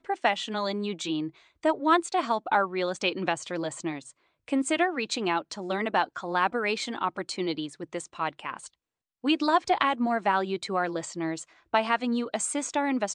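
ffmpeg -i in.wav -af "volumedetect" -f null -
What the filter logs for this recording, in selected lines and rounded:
mean_volume: -28.6 dB
max_volume: -7.2 dB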